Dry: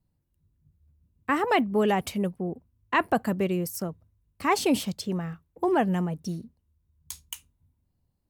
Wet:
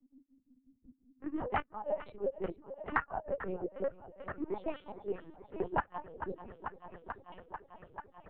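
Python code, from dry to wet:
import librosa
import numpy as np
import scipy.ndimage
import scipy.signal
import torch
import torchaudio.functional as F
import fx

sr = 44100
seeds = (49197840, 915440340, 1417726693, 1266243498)

p1 = fx.phase_scramble(x, sr, seeds[0], window_ms=100)
p2 = scipy.signal.sosfilt(scipy.signal.butter(2, 53.0, 'highpass', fs=sr, output='sos'), p1)
p3 = fx.hpss(p2, sr, part='percussive', gain_db=6)
p4 = p3 + 0.67 * np.pad(p3, (int(3.4 * sr / 1000.0), 0))[:len(p3)]
p5 = fx.level_steps(p4, sr, step_db=15)
p6 = p5 * (1.0 - 0.94 / 2.0 + 0.94 / 2.0 * np.cos(2.0 * np.pi * 5.7 * (np.arange(len(p5)) / sr)))
p7 = fx.auto_wah(p6, sr, base_hz=260.0, top_hz=1400.0, q=6.0, full_db=-21.5, direction='up')
p8 = p7 + fx.echo_thinned(p7, sr, ms=441, feedback_pct=69, hz=230.0, wet_db=-17.5, dry=0)
p9 = fx.lpc_vocoder(p8, sr, seeds[1], excitation='pitch_kept', order=10)
p10 = fx.band_squash(p9, sr, depth_pct=70)
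y = p10 * 10.0 ** (7.0 / 20.0)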